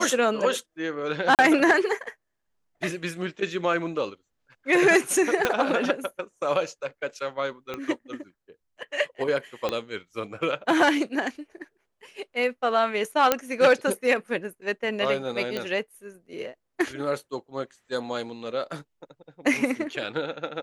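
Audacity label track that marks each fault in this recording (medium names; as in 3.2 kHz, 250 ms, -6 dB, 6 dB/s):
1.350000	1.390000	dropout 38 ms
5.450000	5.450000	pop -7 dBFS
7.740000	7.740000	pop -18 dBFS
9.690000	9.690000	pop -13 dBFS
13.320000	13.320000	pop -4 dBFS
15.570000	15.570000	pop -15 dBFS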